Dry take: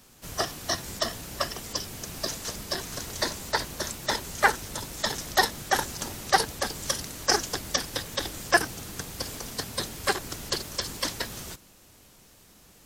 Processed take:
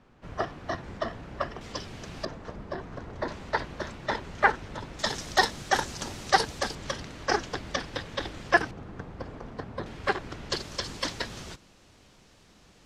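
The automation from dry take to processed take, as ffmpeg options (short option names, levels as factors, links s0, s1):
-af "asetnsamples=n=441:p=0,asendcmd='1.61 lowpass f 3400;2.25 lowpass f 1300;3.28 lowpass f 2400;4.99 lowpass f 6200;6.75 lowpass f 3100;8.71 lowpass f 1300;9.86 lowpass f 2600;10.5 lowpass f 5100',lowpass=1800"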